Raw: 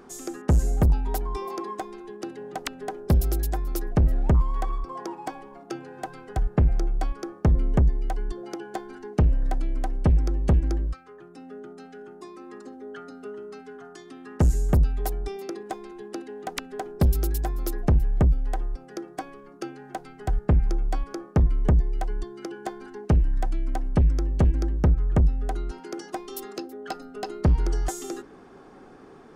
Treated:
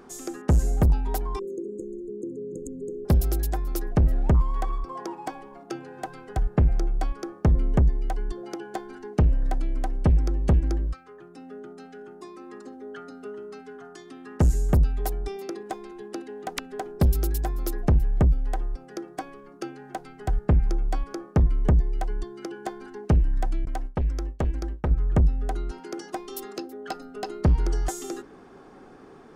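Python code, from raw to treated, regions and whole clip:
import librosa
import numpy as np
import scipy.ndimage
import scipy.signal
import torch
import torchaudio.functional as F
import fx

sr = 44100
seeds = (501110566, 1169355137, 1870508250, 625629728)

y = fx.chain(x, sr, fx.brickwall_bandstop(low_hz=530.0, high_hz=6400.0),
    fx.air_absorb(metres=77.0),
    fx.env_flatten(amount_pct=50), at=(1.39, 3.05))
y = fx.chain(y, sr, fx.peak_eq(hz=120.0, db=-9.0, octaves=2.7),
    fx.gate_hold(open_db=-23.0, close_db=-25.0, hold_ms=71.0, range_db=-21, attack_ms=1.4, release_ms=100.0), at=(23.65, 24.91))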